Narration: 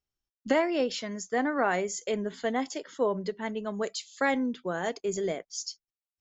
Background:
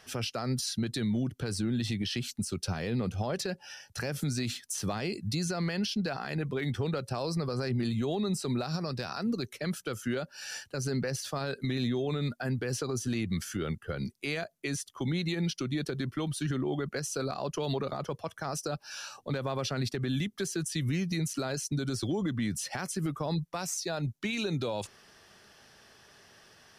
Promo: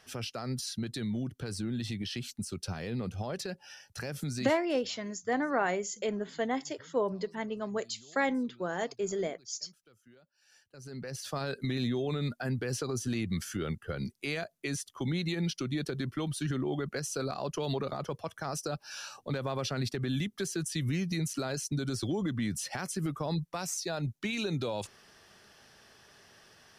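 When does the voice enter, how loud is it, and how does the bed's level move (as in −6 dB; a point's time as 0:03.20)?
3.95 s, −2.5 dB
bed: 0:04.47 −4 dB
0:04.69 −27.5 dB
0:10.39 −27.5 dB
0:11.31 −1 dB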